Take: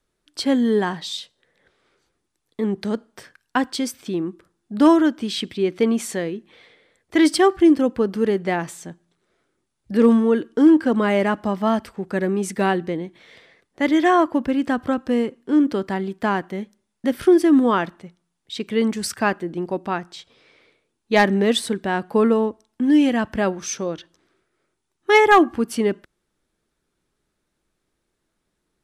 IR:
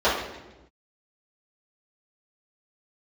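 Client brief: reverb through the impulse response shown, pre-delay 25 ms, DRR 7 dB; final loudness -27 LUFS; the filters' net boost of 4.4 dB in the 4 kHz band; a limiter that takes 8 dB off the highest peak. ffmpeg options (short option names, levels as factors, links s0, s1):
-filter_complex "[0:a]equalizer=f=4000:t=o:g=5.5,alimiter=limit=0.299:level=0:latency=1,asplit=2[s0][s1];[1:a]atrim=start_sample=2205,adelay=25[s2];[s1][s2]afir=irnorm=-1:irlink=0,volume=0.0473[s3];[s0][s3]amix=inputs=2:normalize=0,volume=0.501"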